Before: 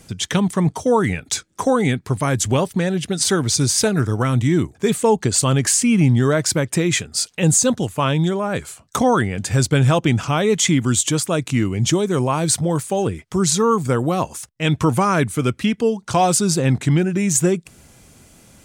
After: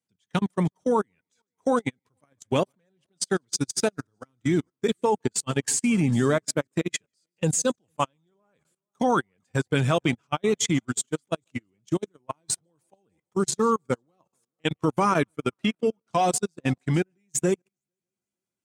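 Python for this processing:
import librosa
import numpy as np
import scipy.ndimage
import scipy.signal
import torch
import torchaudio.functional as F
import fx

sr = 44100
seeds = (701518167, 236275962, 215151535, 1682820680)

y = fx.spec_quant(x, sr, step_db=15)
y = fx.low_shelf(y, sr, hz=120.0, db=-9.0)
y = fx.echo_heads(y, sr, ms=151, heads='first and third', feedback_pct=44, wet_db=-24.0)
y = fx.level_steps(y, sr, step_db=19)
y = scipy.signal.sosfilt(scipy.signal.butter(2, 93.0, 'highpass', fs=sr, output='sos'), y)
y = fx.high_shelf(y, sr, hz=6900.0, db=-3.0)
y = fx.upward_expand(y, sr, threshold_db=-40.0, expansion=2.5)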